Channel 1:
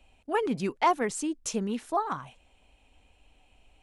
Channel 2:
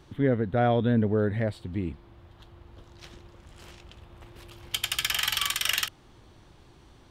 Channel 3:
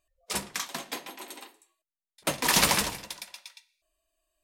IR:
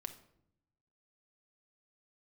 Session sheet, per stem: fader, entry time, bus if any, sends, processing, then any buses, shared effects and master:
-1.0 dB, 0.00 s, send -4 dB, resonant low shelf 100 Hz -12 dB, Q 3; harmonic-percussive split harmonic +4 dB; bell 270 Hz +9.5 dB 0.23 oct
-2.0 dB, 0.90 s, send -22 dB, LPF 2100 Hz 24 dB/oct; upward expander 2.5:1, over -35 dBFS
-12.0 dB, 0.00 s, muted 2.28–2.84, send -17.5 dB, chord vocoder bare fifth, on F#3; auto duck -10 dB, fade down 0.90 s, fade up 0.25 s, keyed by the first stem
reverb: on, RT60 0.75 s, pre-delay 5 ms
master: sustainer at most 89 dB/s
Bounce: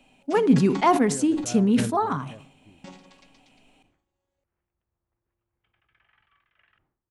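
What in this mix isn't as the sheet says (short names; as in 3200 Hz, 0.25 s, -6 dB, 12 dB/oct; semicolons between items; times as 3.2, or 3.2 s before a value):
stem 2 -2.0 dB -> -13.5 dB; stem 3 -12.0 dB -> -2.0 dB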